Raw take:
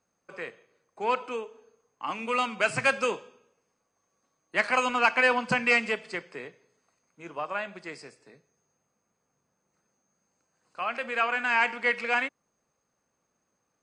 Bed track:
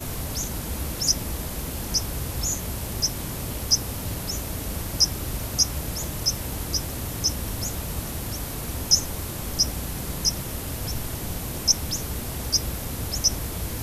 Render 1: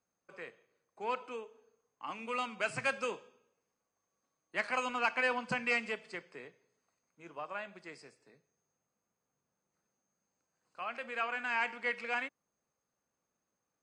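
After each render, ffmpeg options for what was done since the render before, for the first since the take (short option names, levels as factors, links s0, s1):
-af "volume=0.355"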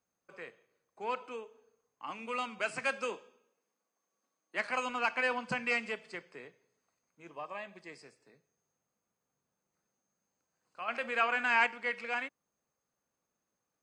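-filter_complex "[0:a]asettb=1/sr,asplit=3[s0][s1][s2];[s0]atrim=end=2.594[s3];[s1]atrim=start=2.59:end=4.66,asetpts=PTS-STARTPTS,afade=t=in:d=0.004:c=qsin,afade=t=out:st=2.066:d=0.004:c=qsin,highpass=f=180:w=0.5412,highpass=f=180:w=1.3066[s4];[s2]atrim=start=4.656[s5];[s3][s4]acrossfade=d=0.004:c1=hsin:c2=qsin[s6];[s6][s5]acrossfade=d=0.004:c1=qsin:c2=hsin,asettb=1/sr,asplit=3[s7][s8][s9];[s7]atrim=end=7.284[s10];[s8]atrim=start=7.28:end=8.03,asetpts=PTS-STARTPTS,afade=t=in:d=0.004:c=qsin,afade=t=out:st=0.746:d=0.004:c=qsin,asuperstop=centerf=1400:order=20:qfactor=7[s11];[s9]atrim=start=8.026[s12];[s10][s11]acrossfade=d=0.004:c1=hsin:c2=qsin[s13];[s13][s12]acrossfade=d=0.004:c1=qsin:c2=hsin,asettb=1/sr,asplit=3[s14][s15][s16];[s14]atrim=end=10.884[s17];[s15]atrim=start=10.88:end=11.67,asetpts=PTS-STARTPTS,afade=t=in:d=0.004:c=qsin,afade=t=out:st=0.786:d=0.004:c=qsin,acontrast=46[s18];[s16]atrim=start=11.666[s19];[s17][s18]acrossfade=d=0.004:c1=hsin:c2=qsin[s20];[s20][s19]acrossfade=d=0.004:c1=qsin:c2=hsin"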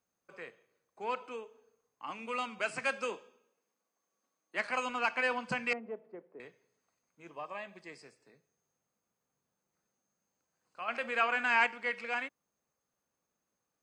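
-filter_complex "[0:a]asettb=1/sr,asplit=3[s0][s1][s2];[s0]atrim=end=5.734[s3];[s1]atrim=start=5.73:end=6.4,asetpts=PTS-STARTPTS,afade=t=in:d=0.004:c=qsin,afade=t=out:st=0.666:d=0.004:c=qsin,asuperpass=centerf=390:order=4:qfactor=0.72[s4];[s2]atrim=start=6.396[s5];[s3][s4]acrossfade=d=0.004:c1=hsin:c2=qsin[s6];[s6][s5]acrossfade=d=0.004:c1=qsin:c2=hsin"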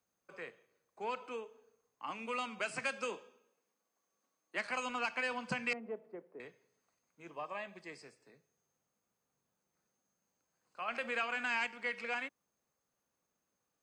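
-filter_complex "[0:a]acrossover=split=210|3000[s0][s1][s2];[s1]acompressor=threshold=0.0178:ratio=6[s3];[s0][s3][s2]amix=inputs=3:normalize=0"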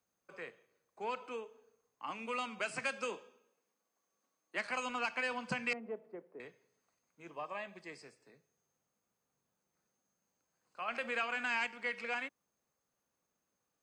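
-af anull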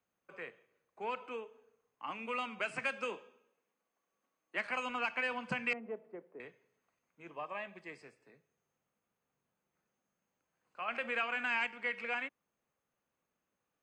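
-af "highshelf=f=3600:t=q:w=1.5:g=-6.5"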